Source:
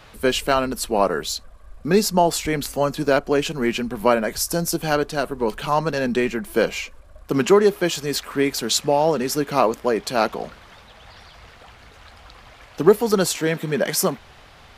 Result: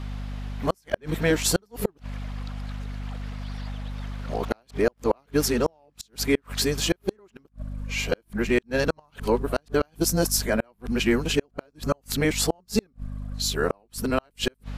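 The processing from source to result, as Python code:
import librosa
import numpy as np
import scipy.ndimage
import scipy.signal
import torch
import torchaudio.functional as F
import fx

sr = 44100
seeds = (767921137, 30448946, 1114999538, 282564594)

y = np.flip(x).copy()
y = fx.add_hum(y, sr, base_hz=50, snr_db=11)
y = fx.gate_flip(y, sr, shuts_db=-9.0, range_db=-40)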